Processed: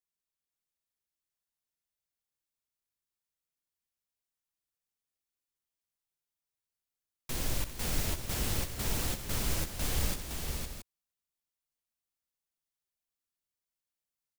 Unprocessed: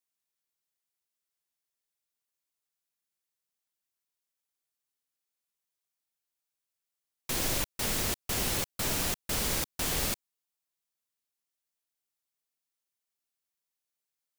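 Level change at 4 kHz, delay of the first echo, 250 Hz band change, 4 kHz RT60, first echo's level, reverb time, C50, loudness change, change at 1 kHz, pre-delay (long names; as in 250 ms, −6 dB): −4.5 dB, 60 ms, −2.0 dB, no reverb audible, −10.5 dB, no reverb audible, no reverb audible, −4.5 dB, −4.5 dB, no reverb audible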